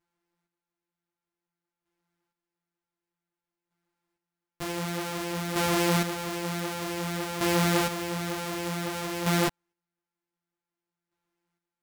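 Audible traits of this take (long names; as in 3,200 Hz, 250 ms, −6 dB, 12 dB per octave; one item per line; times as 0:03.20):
a buzz of ramps at a fixed pitch in blocks of 256 samples
chopped level 0.54 Hz, depth 60%, duty 25%
a shimmering, thickened sound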